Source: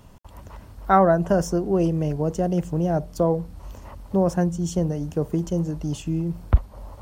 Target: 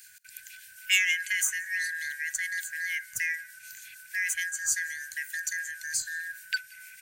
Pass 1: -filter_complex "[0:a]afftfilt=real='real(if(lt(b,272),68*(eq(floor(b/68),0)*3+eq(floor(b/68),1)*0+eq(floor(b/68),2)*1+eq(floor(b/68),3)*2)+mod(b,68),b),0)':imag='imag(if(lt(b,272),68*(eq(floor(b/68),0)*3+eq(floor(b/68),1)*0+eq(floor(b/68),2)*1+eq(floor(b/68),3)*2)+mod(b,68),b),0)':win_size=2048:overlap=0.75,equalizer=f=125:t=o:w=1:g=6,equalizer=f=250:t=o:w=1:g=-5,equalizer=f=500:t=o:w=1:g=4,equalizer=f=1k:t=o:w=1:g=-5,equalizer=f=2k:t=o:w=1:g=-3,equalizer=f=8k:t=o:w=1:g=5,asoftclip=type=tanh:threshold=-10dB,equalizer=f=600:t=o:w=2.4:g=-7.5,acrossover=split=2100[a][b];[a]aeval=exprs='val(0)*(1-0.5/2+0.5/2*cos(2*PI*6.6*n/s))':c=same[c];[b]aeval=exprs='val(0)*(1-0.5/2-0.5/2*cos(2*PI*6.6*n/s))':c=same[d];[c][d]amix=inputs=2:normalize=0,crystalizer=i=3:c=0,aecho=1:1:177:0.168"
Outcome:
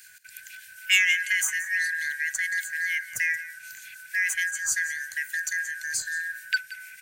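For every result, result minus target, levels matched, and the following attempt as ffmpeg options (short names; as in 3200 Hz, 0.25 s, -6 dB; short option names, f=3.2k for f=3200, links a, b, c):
500 Hz band +7.0 dB; echo-to-direct +9.5 dB
-filter_complex "[0:a]afftfilt=real='real(if(lt(b,272),68*(eq(floor(b/68),0)*3+eq(floor(b/68),1)*0+eq(floor(b/68),2)*1+eq(floor(b/68),3)*2)+mod(b,68),b),0)':imag='imag(if(lt(b,272),68*(eq(floor(b/68),0)*3+eq(floor(b/68),1)*0+eq(floor(b/68),2)*1+eq(floor(b/68),3)*2)+mod(b,68),b),0)':win_size=2048:overlap=0.75,equalizer=f=125:t=o:w=1:g=6,equalizer=f=250:t=o:w=1:g=-5,equalizer=f=500:t=o:w=1:g=4,equalizer=f=1k:t=o:w=1:g=-5,equalizer=f=2k:t=o:w=1:g=-3,equalizer=f=8k:t=o:w=1:g=5,asoftclip=type=tanh:threshold=-10dB,equalizer=f=600:t=o:w=2.4:g=-19.5,acrossover=split=2100[a][b];[a]aeval=exprs='val(0)*(1-0.5/2+0.5/2*cos(2*PI*6.6*n/s))':c=same[c];[b]aeval=exprs='val(0)*(1-0.5/2-0.5/2*cos(2*PI*6.6*n/s))':c=same[d];[c][d]amix=inputs=2:normalize=0,crystalizer=i=3:c=0,aecho=1:1:177:0.168"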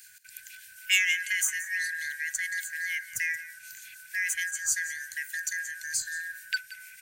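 echo-to-direct +9.5 dB
-filter_complex "[0:a]afftfilt=real='real(if(lt(b,272),68*(eq(floor(b/68),0)*3+eq(floor(b/68),1)*0+eq(floor(b/68),2)*1+eq(floor(b/68),3)*2)+mod(b,68),b),0)':imag='imag(if(lt(b,272),68*(eq(floor(b/68),0)*3+eq(floor(b/68),1)*0+eq(floor(b/68),2)*1+eq(floor(b/68),3)*2)+mod(b,68),b),0)':win_size=2048:overlap=0.75,equalizer=f=125:t=o:w=1:g=6,equalizer=f=250:t=o:w=1:g=-5,equalizer=f=500:t=o:w=1:g=4,equalizer=f=1k:t=o:w=1:g=-5,equalizer=f=2k:t=o:w=1:g=-3,equalizer=f=8k:t=o:w=1:g=5,asoftclip=type=tanh:threshold=-10dB,equalizer=f=600:t=o:w=2.4:g=-19.5,acrossover=split=2100[a][b];[a]aeval=exprs='val(0)*(1-0.5/2+0.5/2*cos(2*PI*6.6*n/s))':c=same[c];[b]aeval=exprs='val(0)*(1-0.5/2-0.5/2*cos(2*PI*6.6*n/s))':c=same[d];[c][d]amix=inputs=2:normalize=0,crystalizer=i=3:c=0,aecho=1:1:177:0.0562"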